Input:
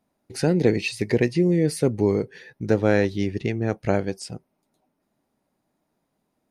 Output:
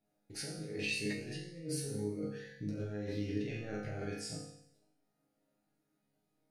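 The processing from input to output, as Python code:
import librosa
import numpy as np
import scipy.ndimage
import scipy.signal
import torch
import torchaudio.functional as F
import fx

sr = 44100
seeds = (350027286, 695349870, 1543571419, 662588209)

y = fx.room_flutter(x, sr, wall_m=7.3, rt60_s=0.37)
y = fx.over_compress(y, sr, threshold_db=-27.0, ratio=-1.0)
y = fx.peak_eq(y, sr, hz=1000.0, db=-14.5, octaves=0.24)
y = fx.resonator_bank(y, sr, root=44, chord='sus4', decay_s=0.77)
y = fx.notch_cascade(y, sr, direction='rising', hz=1.9, at=(1.13, 3.29))
y = y * librosa.db_to_amplitude(6.5)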